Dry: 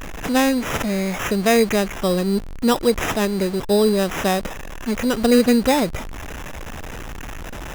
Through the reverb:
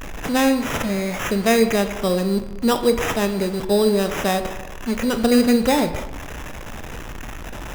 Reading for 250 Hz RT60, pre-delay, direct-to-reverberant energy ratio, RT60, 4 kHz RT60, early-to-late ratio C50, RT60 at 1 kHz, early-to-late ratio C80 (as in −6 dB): 1.2 s, 15 ms, 8.5 dB, 1.1 s, 0.65 s, 11.0 dB, 1.0 s, 12.5 dB